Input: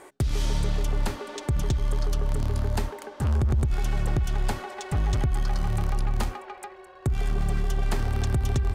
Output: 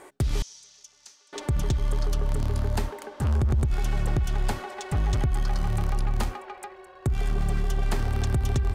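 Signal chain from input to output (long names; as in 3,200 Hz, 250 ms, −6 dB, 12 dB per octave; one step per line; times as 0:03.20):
0:00.42–0:01.33: resonant band-pass 6,000 Hz, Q 4.5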